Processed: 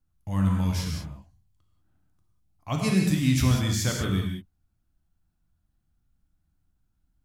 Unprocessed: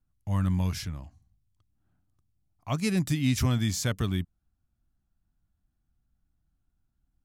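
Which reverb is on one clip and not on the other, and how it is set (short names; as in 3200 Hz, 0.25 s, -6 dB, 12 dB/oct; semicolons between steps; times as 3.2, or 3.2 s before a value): non-linear reverb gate 0.22 s flat, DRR 0 dB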